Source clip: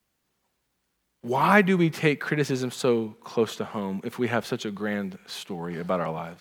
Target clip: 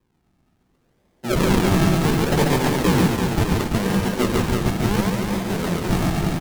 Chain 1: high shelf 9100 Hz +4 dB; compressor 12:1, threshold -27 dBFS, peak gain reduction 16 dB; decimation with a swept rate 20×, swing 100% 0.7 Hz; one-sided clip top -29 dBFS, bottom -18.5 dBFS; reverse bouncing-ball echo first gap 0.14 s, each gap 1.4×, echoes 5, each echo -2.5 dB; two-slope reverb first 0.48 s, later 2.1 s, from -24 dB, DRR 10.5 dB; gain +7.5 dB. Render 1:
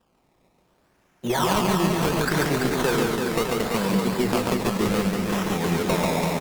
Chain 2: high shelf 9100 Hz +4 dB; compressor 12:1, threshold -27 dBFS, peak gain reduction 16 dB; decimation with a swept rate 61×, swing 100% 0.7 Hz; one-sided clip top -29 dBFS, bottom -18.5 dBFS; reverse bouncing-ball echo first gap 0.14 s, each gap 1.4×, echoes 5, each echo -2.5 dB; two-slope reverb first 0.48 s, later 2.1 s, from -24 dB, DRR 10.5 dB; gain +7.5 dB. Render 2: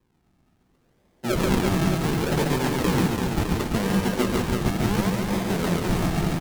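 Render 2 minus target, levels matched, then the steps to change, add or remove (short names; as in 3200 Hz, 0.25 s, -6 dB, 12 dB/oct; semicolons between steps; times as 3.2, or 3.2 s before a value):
compressor: peak gain reduction +8.5 dB
change: compressor 12:1, threshold -18 dBFS, peak gain reduction 7.5 dB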